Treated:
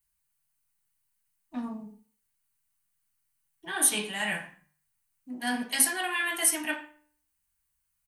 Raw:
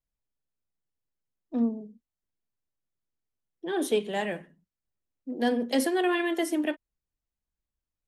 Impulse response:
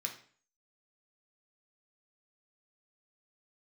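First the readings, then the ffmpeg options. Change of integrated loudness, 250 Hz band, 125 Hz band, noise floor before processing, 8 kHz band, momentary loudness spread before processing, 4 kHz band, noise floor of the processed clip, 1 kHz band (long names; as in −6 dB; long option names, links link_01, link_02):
+1.0 dB, −8.5 dB, −2.5 dB, below −85 dBFS, +16.0 dB, 15 LU, +4.0 dB, −78 dBFS, −2.0 dB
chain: -filter_complex "[0:a]firequalizer=gain_entry='entry(110,0);entry(220,-7);entry(460,-14);entry(890,7);entry(3100,1)':delay=0.05:min_phase=1,areverse,acompressor=threshold=-31dB:ratio=6,areverse,aemphasis=mode=production:type=50kf,bandreject=frequency=149.7:width_type=h:width=4,bandreject=frequency=299.4:width_type=h:width=4,bandreject=frequency=449.1:width_type=h:width=4,bandreject=frequency=598.8:width_type=h:width=4,bandreject=frequency=748.5:width_type=h:width=4,bandreject=frequency=898.2:width_type=h:width=4,bandreject=frequency=1047.9:width_type=h:width=4,bandreject=frequency=1197.6:width_type=h:width=4,bandreject=frequency=1347.3:width_type=h:width=4,bandreject=frequency=1497:width_type=h:width=4,bandreject=frequency=1646.7:width_type=h:width=4,bandreject=frequency=1796.4:width_type=h:width=4,bandreject=frequency=1946.1:width_type=h:width=4,bandreject=frequency=2095.8:width_type=h:width=4,bandreject=frequency=2245.5:width_type=h:width=4,bandreject=frequency=2395.2:width_type=h:width=4,bandreject=frequency=2544.9:width_type=h:width=4,bandreject=frequency=2694.6:width_type=h:width=4,bandreject=frequency=2844.3:width_type=h:width=4[link_01];[1:a]atrim=start_sample=2205,asetrate=52920,aresample=44100[link_02];[link_01][link_02]afir=irnorm=-1:irlink=0,volume=6dB"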